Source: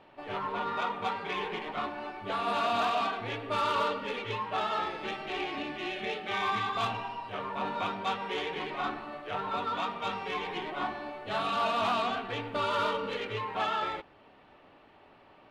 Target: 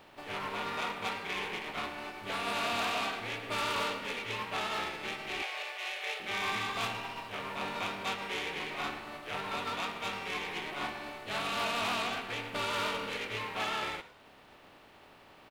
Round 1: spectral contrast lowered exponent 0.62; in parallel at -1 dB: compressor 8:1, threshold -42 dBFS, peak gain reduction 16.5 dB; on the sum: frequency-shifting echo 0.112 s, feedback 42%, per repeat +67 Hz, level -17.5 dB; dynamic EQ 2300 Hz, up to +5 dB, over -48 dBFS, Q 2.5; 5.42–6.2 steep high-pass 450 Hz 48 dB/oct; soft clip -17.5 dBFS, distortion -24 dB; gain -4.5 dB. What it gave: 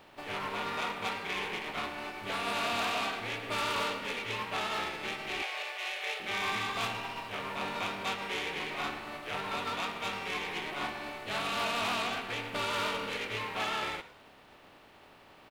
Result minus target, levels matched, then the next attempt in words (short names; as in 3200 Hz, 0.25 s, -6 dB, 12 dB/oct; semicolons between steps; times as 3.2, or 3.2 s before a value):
compressor: peak gain reduction -8.5 dB
spectral contrast lowered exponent 0.62; in parallel at -1 dB: compressor 8:1, threshold -51.5 dBFS, peak gain reduction 25 dB; on the sum: frequency-shifting echo 0.112 s, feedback 42%, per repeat +67 Hz, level -17.5 dB; dynamic EQ 2300 Hz, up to +5 dB, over -48 dBFS, Q 2.5; 5.42–6.2 steep high-pass 450 Hz 48 dB/oct; soft clip -17.5 dBFS, distortion -25 dB; gain -4.5 dB